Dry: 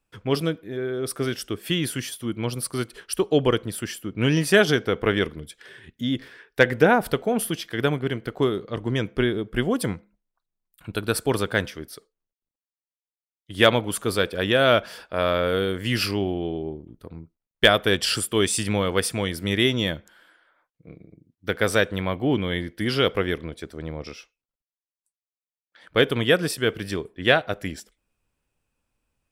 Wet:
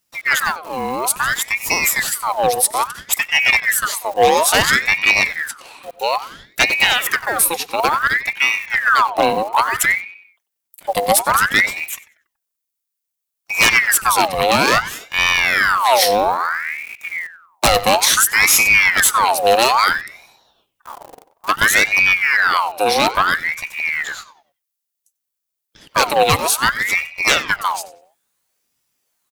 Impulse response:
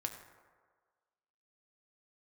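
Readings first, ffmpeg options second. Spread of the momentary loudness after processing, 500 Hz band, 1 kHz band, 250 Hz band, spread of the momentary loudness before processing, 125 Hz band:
12 LU, +1.5 dB, +14.0 dB, -5.0 dB, 16 LU, -6.5 dB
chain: -filter_complex "[0:a]lowshelf=f=150:t=q:w=1.5:g=13,acrossover=split=190[s0][s1];[s0]aeval=exprs='val(0)*gte(abs(val(0)),0.01)':c=same[s2];[s2][s1]amix=inputs=2:normalize=0,crystalizer=i=3:c=0,aeval=exprs='0.398*(abs(mod(val(0)/0.398+3,4)-2)-1)':c=same,asplit=2[s3][s4];[s4]adelay=94,lowpass=f=3000:p=1,volume=0.2,asplit=2[s5][s6];[s6]adelay=94,lowpass=f=3000:p=1,volume=0.4,asplit=2[s7][s8];[s8]adelay=94,lowpass=f=3000:p=1,volume=0.4,asplit=2[s9][s10];[s10]adelay=94,lowpass=f=3000:p=1,volume=0.4[s11];[s5][s7][s9][s11]amix=inputs=4:normalize=0[s12];[s3][s12]amix=inputs=2:normalize=0,aeval=exprs='val(0)*sin(2*PI*1500*n/s+1500*0.6/0.59*sin(2*PI*0.59*n/s))':c=same,volume=1.88"

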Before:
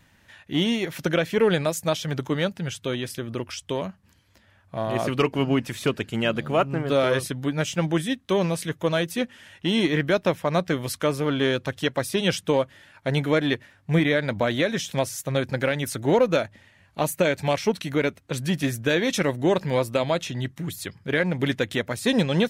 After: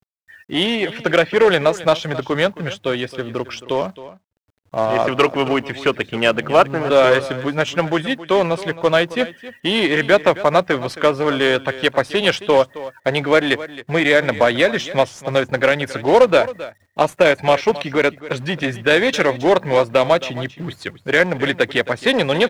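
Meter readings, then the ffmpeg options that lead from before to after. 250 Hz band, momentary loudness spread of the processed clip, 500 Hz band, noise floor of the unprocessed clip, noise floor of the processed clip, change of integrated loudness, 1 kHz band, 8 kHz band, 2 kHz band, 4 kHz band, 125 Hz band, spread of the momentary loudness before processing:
+2.5 dB, 10 LU, +8.5 dB, -59 dBFS, -58 dBFS, +7.0 dB, +10.0 dB, -1.5 dB, +9.5 dB, +7.0 dB, -0.5 dB, 9 LU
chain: -filter_complex "[0:a]afftdn=nr=34:nf=-44,lowshelf=f=230:g=-5,acrossover=split=380[s0][s1];[s0]alimiter=level_in=1.33:limit=0.0631:level=0:latency=1:release=22,volume=0.75[s2];[s1]acontrast=53[s3];[s2][s3]amix=inputs=2:normalize=0,acrusher=bits=3:mode=log:mix=0:aa=0.000001,adynamicsmooth=sensitivity=0.5:basefreq=2900,acrusher=bits=10:mix=0:aa=0.000001,aecho=1:1:268:0.158,volume=1.78"

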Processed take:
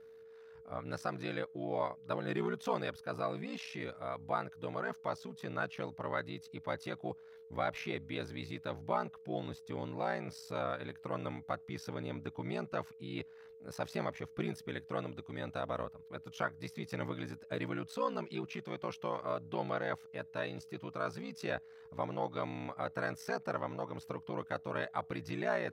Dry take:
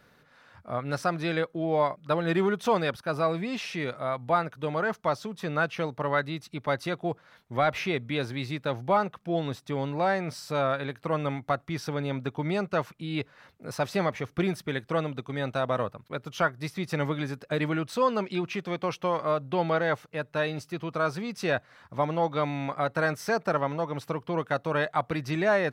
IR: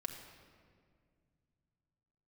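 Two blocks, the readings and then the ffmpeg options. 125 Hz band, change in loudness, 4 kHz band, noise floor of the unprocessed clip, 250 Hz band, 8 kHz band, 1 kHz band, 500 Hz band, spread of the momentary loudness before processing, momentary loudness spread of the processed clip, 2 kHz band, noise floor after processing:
-11.0 dB, -10.5 dB, -10.5 dB, -61 dBFS, -10.5 dB, -10.5 dB, -10.5 dB, -10.5 dB, 7 LU, 7 LU, -10.5 dB, -55 dBFS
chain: -af "aeval=exprs='val(0)*sin(2*PI*30*n/s)':c=same,aeval=exprs='val(0)+0.00562*sin(2*PI*450*n/s)':c=same,volume=0.422"

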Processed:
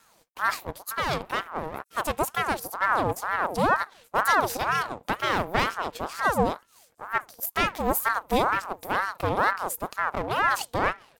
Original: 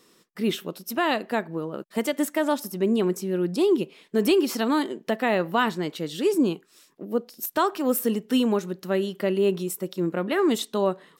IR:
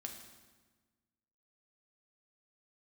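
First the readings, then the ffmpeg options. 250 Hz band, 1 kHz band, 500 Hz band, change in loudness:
-10.5 dB, +6.0 dB, -6.0 dB, -1.5 dB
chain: -filter_complex "[0:a]acrossover=split=7800[s0][s1];[s0]aeval=exprs='max(val(0),0)':c=same[s2];[s1]aecho=1:1:880:0.1[s3];[s2][s3]amix=inputs=2:normalize=0,aeval=exprs='val(0)*sin(2*PI*920*n/s+920*0.5/2.1*sin(2*PI*2.1*n/s))':c=same,volume=1.58"

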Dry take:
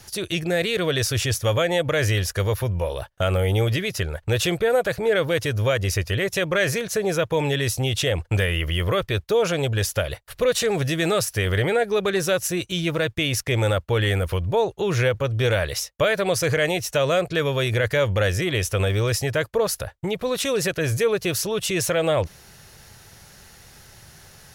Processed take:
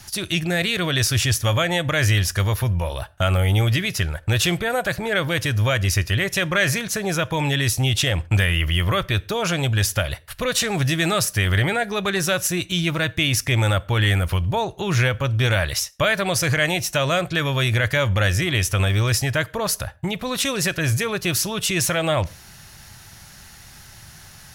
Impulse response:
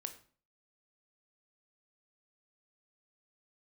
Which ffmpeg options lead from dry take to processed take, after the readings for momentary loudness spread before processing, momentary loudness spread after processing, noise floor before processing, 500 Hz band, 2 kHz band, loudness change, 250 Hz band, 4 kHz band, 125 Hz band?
4 LU, 4 LU, -49 dBFS, -4.0 dB, +3.5 dB, +1.5 dB, +2.0 dB, +4.0 dB, +3.5 dB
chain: -filter_complex "[0:a]equalizer=f=460:t=o:w=0.64:g=-12,asplit=2[s0][s1];[1:a]atrim=start_sample=2205,afade=t=out:st=0.2:d=0.01,atrim=end_sample=9261[s2];[s1][s2]afir=irnorm=-1:irlink=0,volume=0.473[s3];[s0][s3]amix=inputs=2:normalize=0,volume=1.19"

